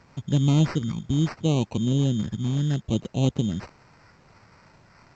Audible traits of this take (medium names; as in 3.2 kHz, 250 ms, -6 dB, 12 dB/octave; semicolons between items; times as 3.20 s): a quantiser's noise floor 10-bit, dither triangular; phasing stages 8, 0.72 Hz, lowest notch 610–2100 Hz; aliases and images of a low sample rate 3.4 kHz, jitter 0%; A-law